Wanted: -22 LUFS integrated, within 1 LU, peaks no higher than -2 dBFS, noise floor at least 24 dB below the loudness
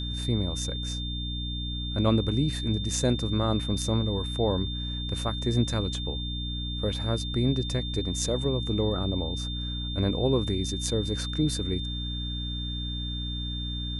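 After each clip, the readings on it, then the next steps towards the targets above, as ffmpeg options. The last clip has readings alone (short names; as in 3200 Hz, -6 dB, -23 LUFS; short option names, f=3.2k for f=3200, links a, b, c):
hum 60 Hz; harmonics up to 300 Hz; hum level -31 dBFS; steady tone 3600 Hz; tone level -35 dBFS; loudness -28.5 LUFS; peak -11.5 dBFS; loudness target -22.0 LUFS
-> -af "bandreject=f=60:t=h:w=4,bandreject=f=120:t=h:w=4,bandreject=f=180:t=h:w=4,bandreject=f=240:t=h:w=4,bandreject=f=300:t=h:w=4"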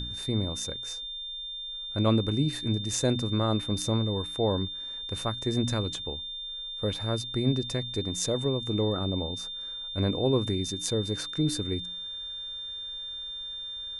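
hum none; steady tone 3600 Hz; tone level -35 dBFS
-> -af "bandreject=f=3.6k:w=30"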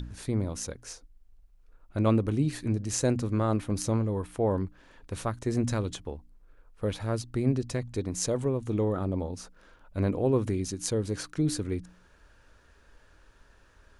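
steady tone none; loudness -30.0 LUFS; peak -11.0 dBFS; loudness target -22.0 LUFS
-> -af "volume=8dB"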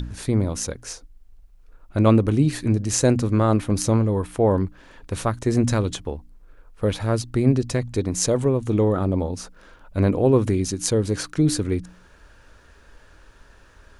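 loudness -22.0 LUFS; peak -3.0 dBFS; noise floor -52 dBFS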